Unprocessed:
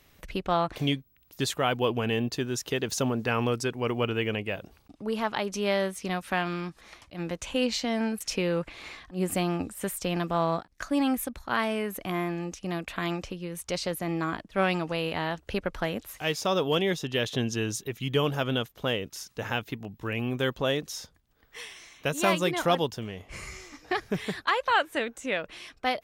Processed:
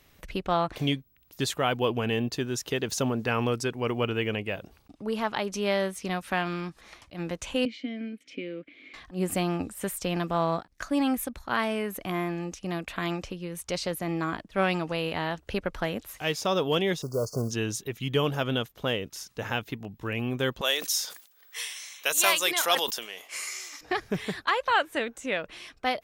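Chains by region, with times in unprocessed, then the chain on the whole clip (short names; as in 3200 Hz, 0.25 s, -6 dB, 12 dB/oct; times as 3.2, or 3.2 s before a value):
7.65–8.94 vowel filter i + bell 690 Hz +14 dB 1.9 oct
17.02–17.51 block floating point 5-bit + brick-wall FIR band-stop 1500–4400 Hz + comb 1.8 ms, depth 43%
20.61–23.81 HPF 380 Hz + tilt +4 dB/oct + sustainer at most 110 dB/s
whole clip: dry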